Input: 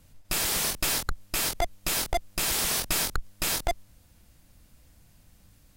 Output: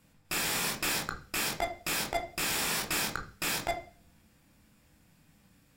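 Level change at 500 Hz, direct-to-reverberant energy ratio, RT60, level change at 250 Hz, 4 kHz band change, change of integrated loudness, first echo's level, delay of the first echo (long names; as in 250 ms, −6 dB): −2.5 dB, 3.0 dB, 0.40 s, −0.5 dB, −3.5 dB, −4.0 dB, no echo audible, no echo audible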